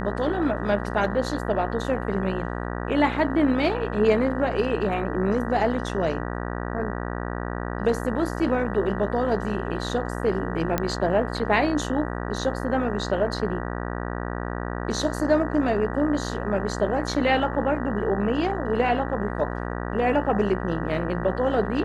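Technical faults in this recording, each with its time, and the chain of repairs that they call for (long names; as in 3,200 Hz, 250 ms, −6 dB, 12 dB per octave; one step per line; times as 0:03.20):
mains buzz 60 Hz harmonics 32 −30 dBFS
0:10.78: click −9 dBFS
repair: click removal
hum removal 60 Hz, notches 32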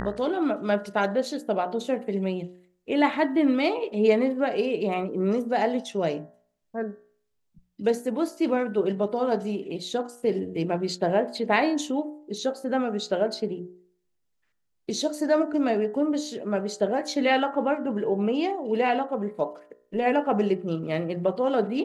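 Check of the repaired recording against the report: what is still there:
none of them is left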